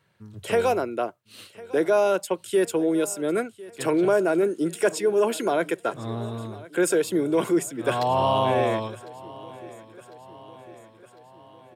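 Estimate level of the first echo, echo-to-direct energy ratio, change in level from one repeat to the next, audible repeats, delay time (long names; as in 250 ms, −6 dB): −20.0 dB, −18.0 dB, −4.5 dB, 4, 1,052 ms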